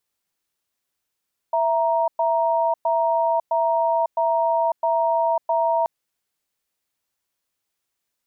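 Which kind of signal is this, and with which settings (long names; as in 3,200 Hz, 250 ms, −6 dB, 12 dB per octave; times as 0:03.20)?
tone pair in a cadence 662 Hz, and 936 Hz, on 0.55 s, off 0.11 s, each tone −20 dBFS 4.33 s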